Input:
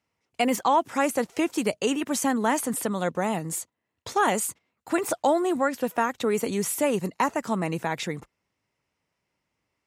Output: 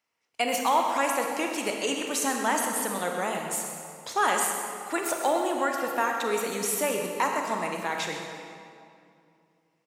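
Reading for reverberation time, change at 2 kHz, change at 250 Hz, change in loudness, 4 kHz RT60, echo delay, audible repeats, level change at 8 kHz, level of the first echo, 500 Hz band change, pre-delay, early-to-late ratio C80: 2.4 s, +1.5 dB, -6.5 dB, -1.5 dB, 1.7 s, 0.128 s, 1, +1.5 dB, -12.0 dB, -2.5 dB, 27 ms, 3.5 dB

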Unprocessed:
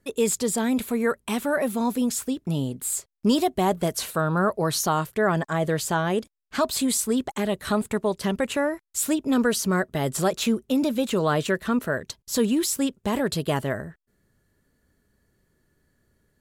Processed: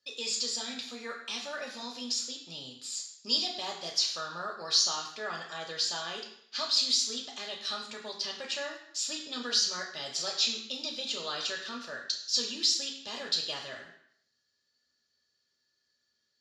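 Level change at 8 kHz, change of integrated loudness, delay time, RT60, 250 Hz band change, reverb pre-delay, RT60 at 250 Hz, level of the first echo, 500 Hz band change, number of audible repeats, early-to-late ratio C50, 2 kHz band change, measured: -5.0 dB, -6.5 dB, none, 0.65 s, -22.5 dB, 3 ms, 0.65 s, none, -17.5 dB, none, 6.5 dB, -9.0 dB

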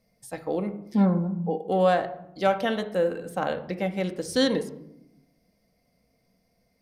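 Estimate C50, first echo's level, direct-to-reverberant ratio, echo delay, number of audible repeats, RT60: 13.0 dB, none, 6.0 dB, none, none, 0.80 s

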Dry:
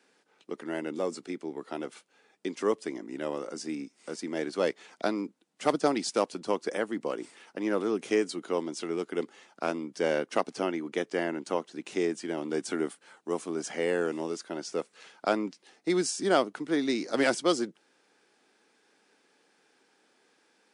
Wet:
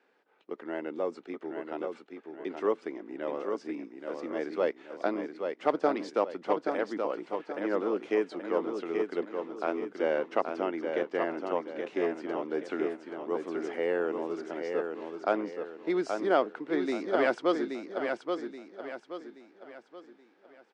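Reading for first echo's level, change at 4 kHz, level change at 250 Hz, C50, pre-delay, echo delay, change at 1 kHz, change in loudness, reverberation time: -5.5 dB, -8.5 dB, -2.0 dB, none, none, 0.827 s, +0.5 dB, -1.0 dB, none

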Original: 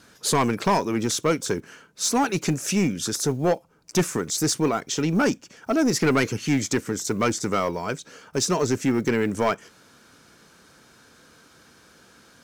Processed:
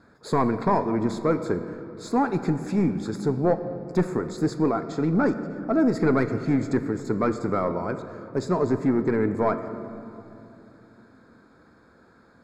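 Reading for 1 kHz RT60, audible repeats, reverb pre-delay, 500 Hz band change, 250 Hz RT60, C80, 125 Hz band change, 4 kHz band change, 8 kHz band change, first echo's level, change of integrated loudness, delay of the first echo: 2.5 s, none, 3 ms, 0.0 dB, 4.4 s, 11.5 dB, 0.0 dB, -16.0 dB, under -20 dB, none, -1.0 dB, none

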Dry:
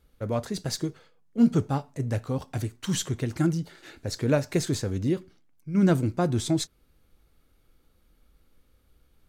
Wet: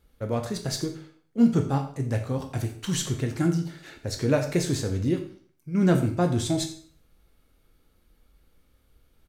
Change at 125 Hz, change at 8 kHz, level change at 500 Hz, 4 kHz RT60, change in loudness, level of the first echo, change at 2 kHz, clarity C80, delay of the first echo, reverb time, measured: +1.0 dB, +1.0 dB, +1.0 dB, 0.45 s, +1.0 dB, -16.0 dB, +1.5 dB, 12.0 dB, 87 ms, 0.50 s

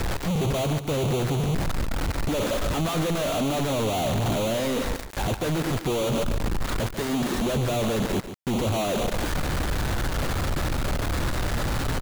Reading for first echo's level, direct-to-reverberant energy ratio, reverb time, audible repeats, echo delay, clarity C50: -11.0 dB, none, none, 1, 0.143 s, none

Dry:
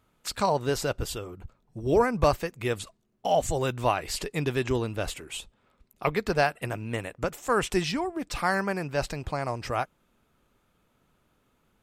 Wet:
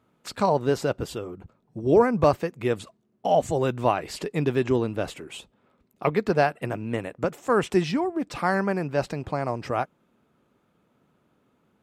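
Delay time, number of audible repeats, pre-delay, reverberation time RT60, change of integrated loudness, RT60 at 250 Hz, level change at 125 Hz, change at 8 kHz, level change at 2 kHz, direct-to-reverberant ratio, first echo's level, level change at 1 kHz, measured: none, none, none, none, +3.0 dB, none, +2.5 dB, -5.5 dB, -0.5 dB, none, none, +2.0 dB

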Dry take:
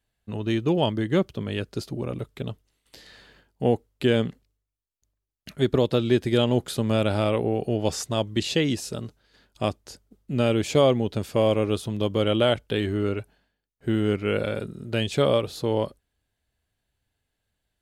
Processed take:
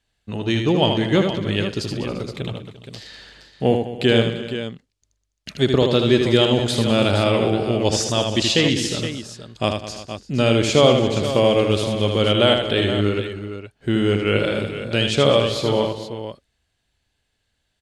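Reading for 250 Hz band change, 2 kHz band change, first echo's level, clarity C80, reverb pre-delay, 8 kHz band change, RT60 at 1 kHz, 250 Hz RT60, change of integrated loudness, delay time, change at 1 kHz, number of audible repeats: +5.0 dB, +8.5 dB, -5.5 dB, none, none, +8.5 dB, none, none, +5.5 dB, 78 ms, +6.0 dB, 6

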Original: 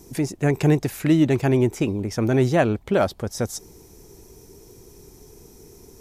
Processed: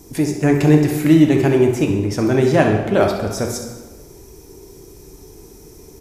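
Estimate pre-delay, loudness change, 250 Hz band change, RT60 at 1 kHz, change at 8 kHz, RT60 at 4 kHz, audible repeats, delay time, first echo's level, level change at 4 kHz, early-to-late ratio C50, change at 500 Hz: 3 ms, +5.5 dB, +6.5 dB, 1.3 s, +4.5 dB, 1.0 s, 1, 66 ms, -11.0 dB, +5.0 dB, 4.5 dB, +5.5 dB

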